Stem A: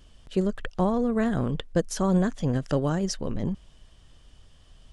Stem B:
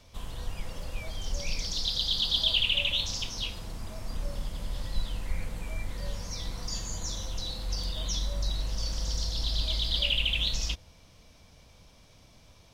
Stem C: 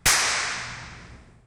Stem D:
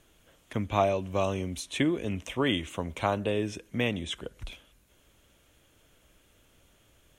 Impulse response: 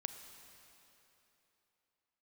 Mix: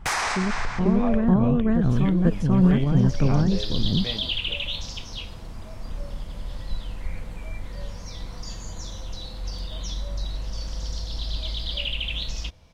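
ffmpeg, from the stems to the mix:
-filter_complex "[0:a]bass=f=250:g=12,treble=f=4000:g=-15,bandreject=f=560:w=15,volume=1,asplit=2[s0][s1];[s1]volume=0.668[s2];[1:a]adelay=1750,volume=1.12[s3];[2:a]equalizer=f=860:t=o:w=1.1:g=8.5,volume=1.33[s4];[3:a]lowpass=2400,flanger=delay=18:depth=7.5:speed=0.53,adelay=250,volume=0.708[s5];[s0][s3][s4]amix=inputs=3:normalize=0,highshelf=f=4600:g=-9,alimiter=limit=0.15:level=0:latency=1:release=50,volume=1[s6];[s2]aecho=0:1:491:1[s7];[s5][s6][s7]amix=inputs=3:normalize=0"

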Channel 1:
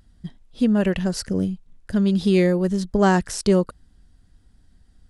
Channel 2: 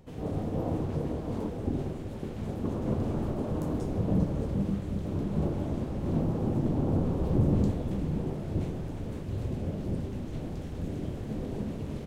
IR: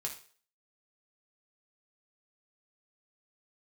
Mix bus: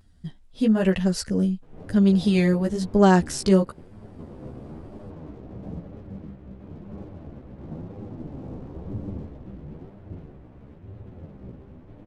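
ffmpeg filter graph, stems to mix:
-filter_complex "[0:a]volume=1.26[s0];[1:a]lowpass=2000,aeval=exprs='sgn(val(0))*max(abs(val(0))-0.00473,0)':c=same,adelay=1550,volume=0.531[s1];[s0][s1]amix=inputs=2:normalize=0,flanger=delay=9.8:depth=6.2:regen=2:speed=1:shape=sinusoidal"

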